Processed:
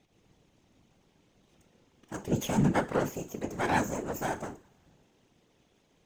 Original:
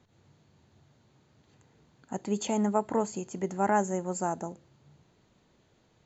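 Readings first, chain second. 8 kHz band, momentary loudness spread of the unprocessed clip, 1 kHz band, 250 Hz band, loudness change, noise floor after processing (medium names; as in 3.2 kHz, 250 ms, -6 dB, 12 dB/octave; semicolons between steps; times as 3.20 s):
no reading, 11 LU, -2.5 dB, 0.0 dB, -0.5 dB, -69 dBFS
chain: comb filter that takes the minimum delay 0.33 ms; bass shelf 85 Hz -12 dB; two-slope reverb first 0.3 s, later 2.2 s, from -28 dB, DRR 6.5 dB; whisper effect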